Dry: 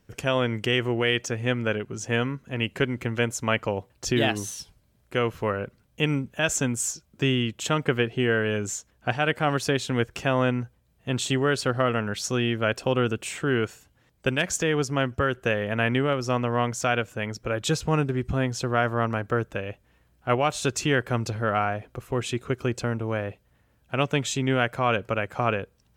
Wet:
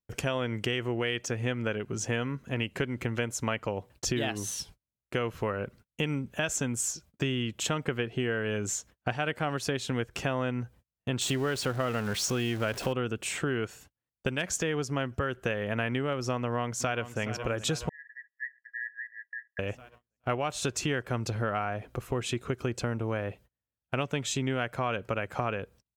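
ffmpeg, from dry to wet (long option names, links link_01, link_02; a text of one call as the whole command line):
ffmpeg -i in.wav -filter_complex "[0:a]asettb=1/sr,asplit=3[link_01][link_02][link_03];[link_01]atrim=end=11.214[link_04];[link_02]atrim=start=11.21:end=12.93,asetpts=PTS-STARTPTS,afade=type=in:duration=0.004:curve=qsin,afade=type=out:start_time=1.716:duration=0.004:curve=qsin,aeval=exprs='val(0)+0.5*0.0266*sgn(val(0))':channel_layout=same[link_05];[link_03]atrim=start=12.926[link_06];[link_04][link_05]acrossfade=duration=0.004:curve1=hsin:curve2=qsin[link_07];[link_07][link_06]acrossfade=duration=0.004:curve1=qsin:curve2=hsin,asplit=2[link_08][link_09];[link_09]afade=type=in:start_time=16.38:duration=0.01,afade=type=out:start_time=17.22:duration=0.01,aecho=0:1:420|840|1260|1680|2100|2520|2940|3360|3780|4200:0.158489|0.118867|0.0891502|0.0668627|0.050147|0.0376103|0.0282077|0.0211558|0.0158668|0.0119001[link_10];[link_08][link_10]amix=inputs=2:normalize=0,asettb=1/sr,asplit=3[link_11][link_12][link_13];[link_11]atrim=end=17.894[link_14];[link_12]atrim=start=17.89:end=19.59,asetpts=PTS-STARTPTS,afade=type=in:duration=0.004:curve=qsin,afade=type=out:start_time=1.696:duration=0.004:curve=qsin,asuperpass=centerf=1800:order=20:qfactor=5.6[link_15];[link_13]atrim=start=19.586[link_16];[link_14][link_15]acrossfade=duration=0.004:curve1=hsin:curve2=qsin[link_17];[link_17][link_16]acrossfade=duration=0.004:curve1=qsin:curve2=hsin,agate=range=-33dB:threshold=-50dB:ratio=16:detection=peak,acompressor=threshold=-30dB:ratio=4,volume=2dB" out.wav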